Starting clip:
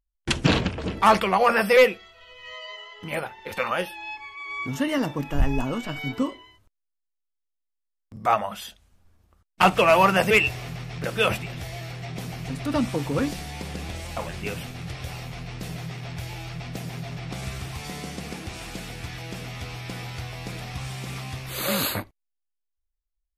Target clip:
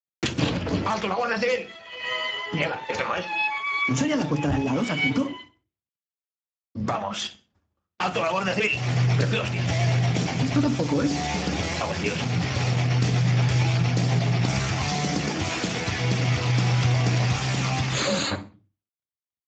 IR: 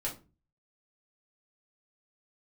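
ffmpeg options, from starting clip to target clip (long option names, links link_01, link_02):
-filter_complex "[0:a]agate=range=-33dB:threshold=-45dB:ratio=3:detection=peak,lowshelf=frequency=86:gain=-5,asplit=2[link_01][link_02];[link_02]acompressor=threshold=-30dB:ratio=8,volume=0dB[link_03];[link_01][link_03]amix=inputs=2:normalize=0,alimiter=limit=-15.5dB:level=0:latency=1:release=374,acrossover=split=140|3000[link_04][link_05][link_06];[link_05]acompressor=threshold=-29dB:ratio=5[link_07];[link_04][link_07][link_06]amix=inputs=3:normalize=0,flanger=delay=9.7:depth=7.9:regen=-76:speed=0.15:shape=triangular,atempo=1.2,aecho=1:1:63|126|189:0.0794|0.0286|0.0103,asplit=2[link_08][link_09];[1:a]atrim=start_sample=2205,afade=type=out:start_time=0.44:duration=0.01,atrim=end_sample=19845[link_10];[link_09][link_10]afir=irnorm=-1:irlink=0,volume=-6.5dB[link_11];[link_08][link_11]amix=inputs=2:normalize=0,volume=7.5dB" -ar 16000 -c:a libspeex -b:a 13k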